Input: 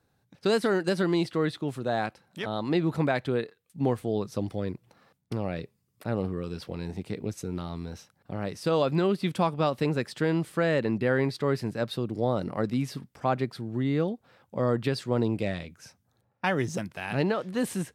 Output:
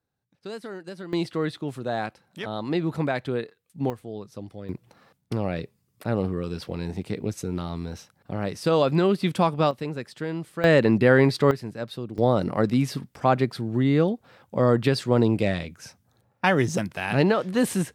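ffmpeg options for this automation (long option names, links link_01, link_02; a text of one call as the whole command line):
ffmpeg -i in.wav -af "asetnsamples=nb_out_samples=441:pad=0,asendcmd='1.13 volume volume 0dB;3.9 volume volume -7.5dB;4.69 volume volume 4dB;9.71 volume volume -4.5dB;10.64 volume volume 8dB;11.51 volume volume -3dB;12.18 volume volume 6dB',volume=-12dB" out.wav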